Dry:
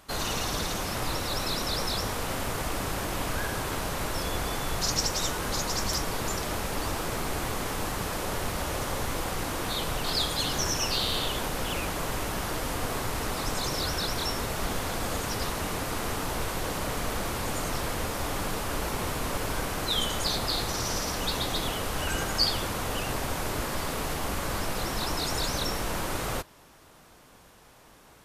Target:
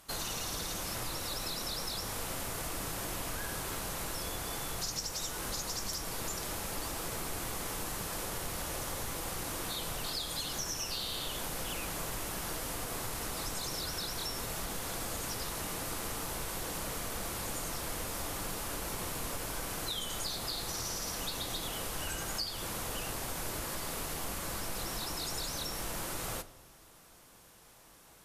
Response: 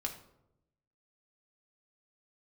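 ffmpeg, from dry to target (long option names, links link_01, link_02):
-filter_complex "[0:a]aemphasis=mode=production:type=cd,acompressor=threshold=-28dB:ratio=6,asplit=2[link_01][link_02];[1:a]atrim=start_sample=2205,asetrate=25137,aresample=44100[link_03];[link_02][link_03]afir=irnorm=-1:irlink=0,volume=-10.5dB[link_04];[link_01][link_04]amix=inputs=2:normalize=0,volume=-8.5dB"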